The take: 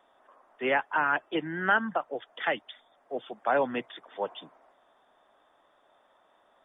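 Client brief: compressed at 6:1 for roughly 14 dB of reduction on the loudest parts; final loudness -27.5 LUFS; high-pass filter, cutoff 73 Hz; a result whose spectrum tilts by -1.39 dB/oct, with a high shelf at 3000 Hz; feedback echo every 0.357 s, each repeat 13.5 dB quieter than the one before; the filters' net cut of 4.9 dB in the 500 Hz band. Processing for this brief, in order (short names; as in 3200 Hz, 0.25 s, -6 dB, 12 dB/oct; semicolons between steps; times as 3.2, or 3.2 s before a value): HPF 73 Hz; bell 500 Hz -6.5 dB; high shelf 3000 Hz +5 dB; compressor 6:1, threshold -35 dBFS; feedback echo 0.357 s, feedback 21%, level -13.5 dB; gain +12.5 dB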